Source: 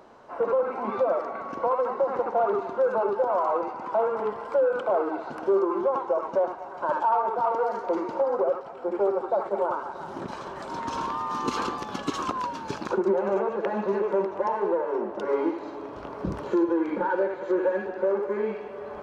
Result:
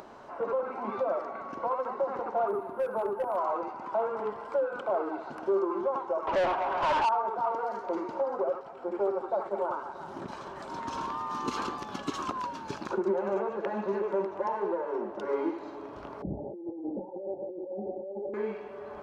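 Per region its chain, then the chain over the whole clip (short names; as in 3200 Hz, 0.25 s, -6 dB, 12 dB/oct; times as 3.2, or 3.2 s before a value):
2.48–3.37 high shelf 2300 Hz -10.5 dB + hard clip -18.5 dBFS + decimation joined by straight lines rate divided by 4×
6.27–7.09 overdrive pedal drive 26 dB, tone 3000 Hz, clips at -15 dBFS + air absorption 57 m + Doppler distortion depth 0.11 ms
16.22–18.34 negative-ratio compressor -30 dBFS + rippled Chebyshev low-pass 830 Hz, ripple 3 dB
whole clip: notch 490 Hz, Q 12; upward compressor, threshold -36 dBFS; gain -4.5 dB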